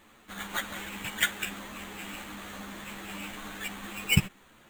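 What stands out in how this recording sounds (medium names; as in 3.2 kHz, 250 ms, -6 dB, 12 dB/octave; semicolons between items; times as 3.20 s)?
aliases and images of a low sample rate 5.2 kHz, jitter 0%; a shimmering, thickened sound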